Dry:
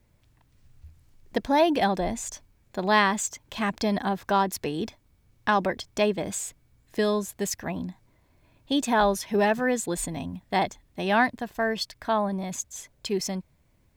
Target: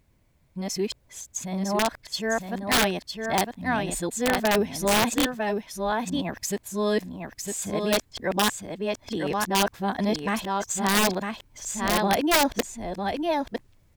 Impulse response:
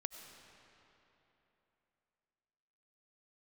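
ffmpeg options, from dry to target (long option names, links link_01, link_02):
-filter_complex "[0:a]areverse,asplit=2[link_01][link_02];[link_02]aecho=0:1:955:0.562[link_03];[link_01][link_03]amix=inputs=2:normalize=0,aeval=exprs='(mod(5.01*val(0)+1,2)-1)/5.01':channel_layout=same"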